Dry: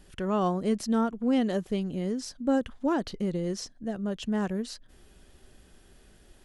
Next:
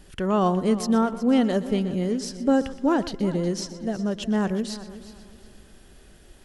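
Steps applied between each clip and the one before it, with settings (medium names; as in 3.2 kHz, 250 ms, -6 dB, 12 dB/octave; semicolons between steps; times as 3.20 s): multi-head delay 122 ms, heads first and third, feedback 45%, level -16 dB; trim +5 dB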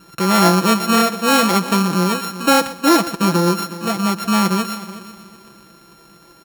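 sorted samples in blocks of 32 samples; high-pass 150 Hz 12 dB/octave; comb 6 ms, depth 68%; trim +6.5 dB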